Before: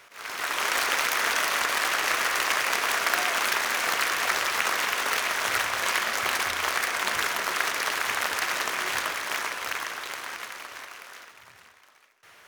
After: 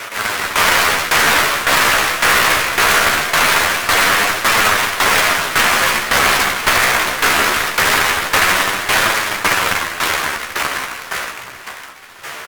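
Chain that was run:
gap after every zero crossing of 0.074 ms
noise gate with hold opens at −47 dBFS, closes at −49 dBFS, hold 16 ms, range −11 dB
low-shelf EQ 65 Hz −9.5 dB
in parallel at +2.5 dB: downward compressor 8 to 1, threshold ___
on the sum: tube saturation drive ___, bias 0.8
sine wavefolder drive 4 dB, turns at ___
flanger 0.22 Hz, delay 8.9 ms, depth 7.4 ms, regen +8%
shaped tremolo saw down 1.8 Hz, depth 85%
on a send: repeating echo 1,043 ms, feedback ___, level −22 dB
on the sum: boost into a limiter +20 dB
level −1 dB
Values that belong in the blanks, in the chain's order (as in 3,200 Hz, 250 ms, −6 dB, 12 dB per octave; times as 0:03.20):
−42 dBFS, 20 dB, −15 dBFS, 53%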